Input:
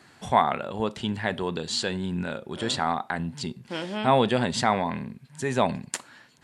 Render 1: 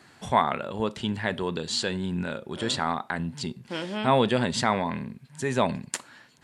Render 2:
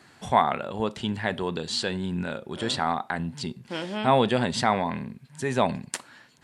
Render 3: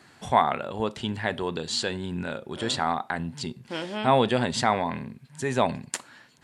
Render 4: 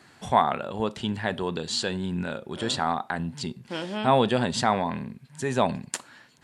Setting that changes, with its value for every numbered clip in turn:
dynamic equaliser, frequency: 750, 7,000, 190, 2,100 Hertz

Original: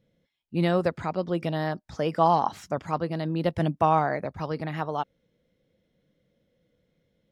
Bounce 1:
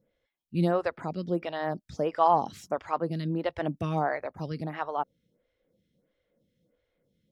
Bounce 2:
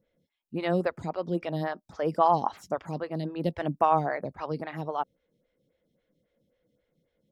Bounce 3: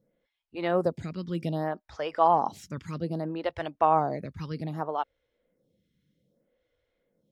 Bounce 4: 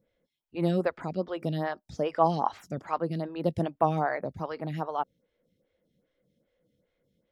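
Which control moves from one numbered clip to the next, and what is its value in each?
phaser with staggered stages, speed: 1.5, 3.7, 0.63, 2.5 Hertz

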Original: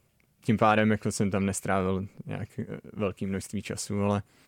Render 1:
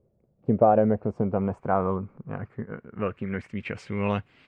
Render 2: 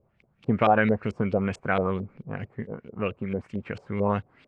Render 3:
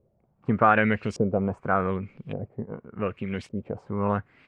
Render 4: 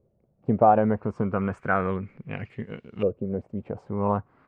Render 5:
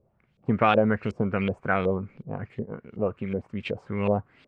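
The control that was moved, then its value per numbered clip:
auto-filter low-pass, speed: 0.2, 4.5, 0.86, 0.33, 2.7 Hertz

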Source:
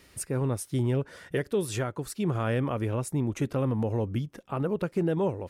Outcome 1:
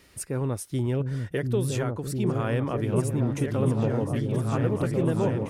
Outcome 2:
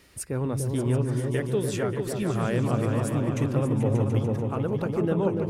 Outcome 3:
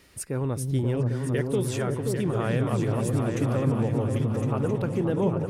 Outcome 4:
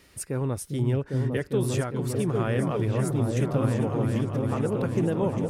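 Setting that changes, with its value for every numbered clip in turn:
echo whose low-pass opens from repeat to repeat, delay time: 697, 146, 265, 402 milliseconds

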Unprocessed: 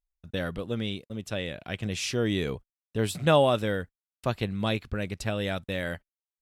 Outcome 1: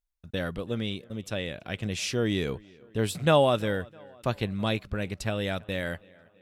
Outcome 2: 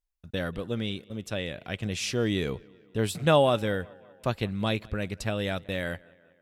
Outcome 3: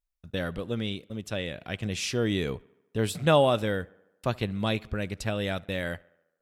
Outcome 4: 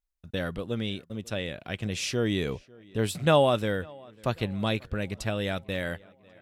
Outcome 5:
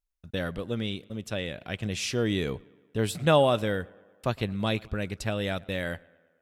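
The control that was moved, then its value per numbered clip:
tape delay, delay time: 328, 186, 71, 545, 111 milliseconds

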